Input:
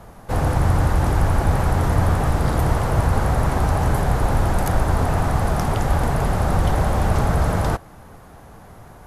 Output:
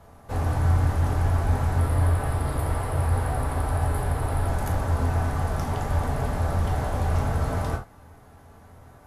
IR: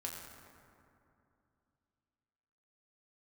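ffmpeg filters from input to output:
-filter_complex "[0:a]asettb=1/sr,asplit=3[link_01][link_02][link_03];[link_01]atrim=end=1.784[link_04];[link_02]atrim=start=1.78:end=4.48,asetpts=PTS-STARTPTS,afade=type=in:duration=0.004:curve=qsin,afade=type=out:start_time=2.696:duration=0.004:curve=qsin,equalizer=frequency=200:width_type=o:width=0.33:gain=-10,equalizer=frequency=6300:width_type=o:width=0.33:gain=-10,equalizer=frequency=10000:width_type=o:width=0.33:gain=8[link_05];[link_03]atrim=start=4.476[link_06];[link_04][link_05]acrossfade=duration=0.004:curve1=hsin:curve2=qsin[link_07];[link_07][link_06]acrossfade=duration=0.004:curve1=qsin:curve2=hsin[link_08];[1:a]atrim=start_sample=2205,atrim=end_sample=3528[link_09];[link_08][link_09]afir=irnorm=-1:irlink=0,volume=-5dB"

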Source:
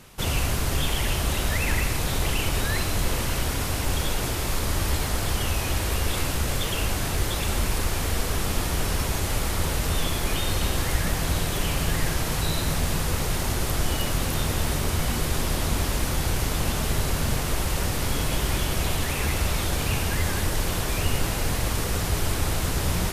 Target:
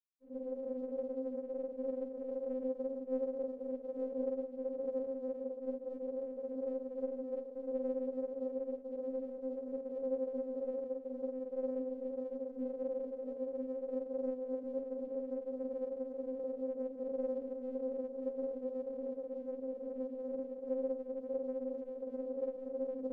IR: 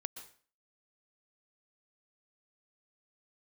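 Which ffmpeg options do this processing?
-filter_complex "[0:a]highshelf=frequency=5700:gain=11,asplit=2[link_01][link_02];[1:a]atrim=start_sample=2205,lowshelf=frequency=230:gain=11,adelay=124[link_03];[link_02][link_03]afir=irnorm=-1:irlink=0,volume=-1dB[link_04];[link_01][link_04]amix=inputs=2:normalize=0,dynaudnorm=framelen=100:gausssize=3:maxgain=10dB,bandreject=frequency=60:width_type=h:width=6,bandreject=frequency=120:width_type=h:width=6,bandreject=frequency=180:width_type=h:width=6,bandreject=frequency=240:width_type=h:width=6,bandreject=frequency=300:width_type=h:width=6,bandreject=frequency=360:width_type=h:width=6,bandreject=frequency=420:width_type=h:width=6,bandreject=frequency=480:width_type=h:width=6,bandreject=frequency=540:width_type=h:width=6,afftfilt=real='re*gte(hypot(re,im),1.58)':imag='im*gte(hypot(re,im),1.58)':win_size=1024:overlap=0.75,afreqshift=-470,afftfilt=real='re*3.46*eq(mod(b,12),0)':imag='im*3.46*eq(mod(b,12),0)':win_size=2048:overlap=0.75,volume=8.5dB"

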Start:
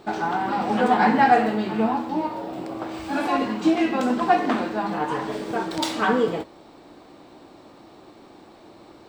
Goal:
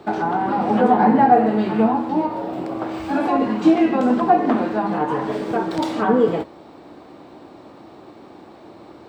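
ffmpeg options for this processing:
ffmpeg -i in.wav -filter_complex "[0:a]highpass=59,highshelf=frequency=3100:gain=-9,acrossover=split=140|980[link_01][link_02][link_03];[link_03]acompressor=threshold=-36dB:ratio=6[link_04];[link_01][link_02][link_04]amix=inputs=3:normalize=0,volume=5.5dB" out.wav

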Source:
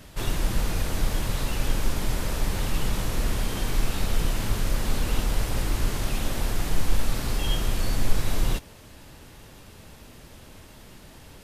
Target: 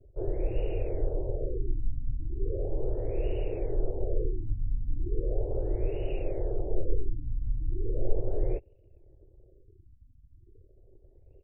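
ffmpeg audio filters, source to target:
ffmpeg -i in.wav -af "highshelf=frequency=4300:gain=10.5,anlmdn=0.251,firequalizer=gain_entry='entry(110,0);entry(200,-20);entry(370,11);entry(550,8);entry(1100,-25);entry(1600,-23);entry(2800,-5);entry(5300,-10);entry(7700,11);entry(11000,15)':delay=0.05:min_phase=1,afftfilt=real='re*lt(b*sr/1024,270*pow(3000/270,0.5+0.5*sin(2*PI*0.37*pts/sr)))':imag='im*lt(b*sr/1024,270*pow(3000/270,0.5+0.5*sin(2*PI*0.37*pts/sr)))':win_size=1024:overlap=0.75,volume=-4.5dB" out.wav

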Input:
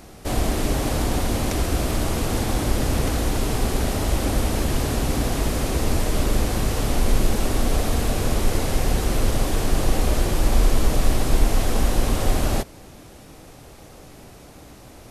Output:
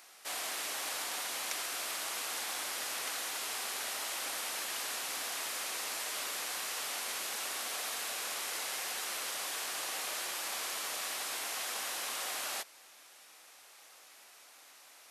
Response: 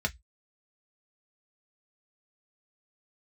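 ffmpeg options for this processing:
-af "highpass=1300,volume=-5dB"

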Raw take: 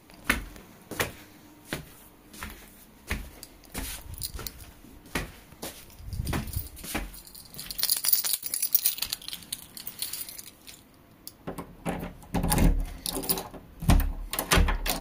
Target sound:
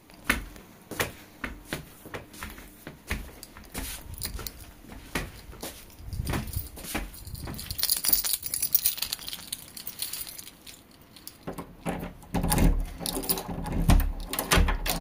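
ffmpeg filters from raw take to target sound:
ffmpeg -i in.wav -filter_complex "[0:a]asplit=2[link_01][link_02];[link_02]adelay=1142,lowpass=frequency=1700:poles=1,volume=-7dB,asplit=2[link_03][link_04];[link_04]adelay=1142,lowpass=frequency=1700:poles=1,volume=0.23,asplit=2[link_05][link_06];[link_06]adelay=1142,lowpass=frequency=1700:poles=1,volume=0.23[link_07];[link_01][link_03][link_05][link_07]amix=inputs=4:normalize=0" out.wav

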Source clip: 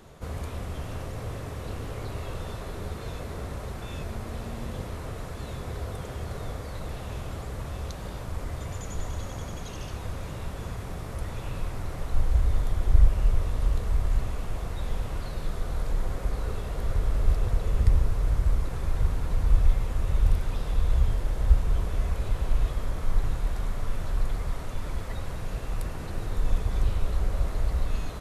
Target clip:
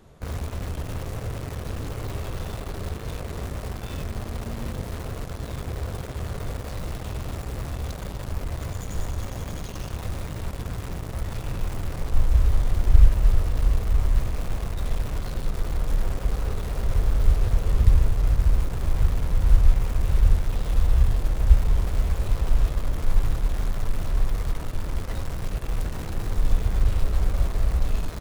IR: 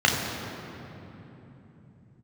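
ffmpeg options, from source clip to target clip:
-filter_complex "[0:a]lowshelf=frequency=380:gain=5,asplit=2[link_01][link_02];[link_02]acrusher=bits=4:mix=0:aa=0.000001,volume=-4.5dB[link_03];[link_01][link_03]amix=inputs=2:normalize=0,volume=-5dB"

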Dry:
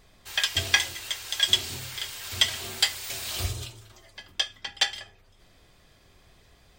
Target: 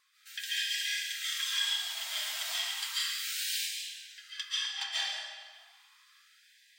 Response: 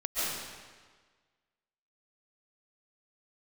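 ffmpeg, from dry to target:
-filter_complex "[0:a]alimiter=limit=-16dB:level=0:latency=1:release=466[link_01];[1:a]atrim=start_sample=2205[link_02];[link_01][link_02]afir=irnorm=-1:irlink=0,afftfilt=real='re*gte(b*sr/1024,570*pow(1600/570,0.5+0.5*sin(2*PI*0.33*pts/sr)))':imag='im*gte(b*sr/1024,570*pow(1600/570,0.5+0.5*sin(2*PI*0.33*pts/sr)))':win_size=1024:overlap=0.75,volume=-7dB"

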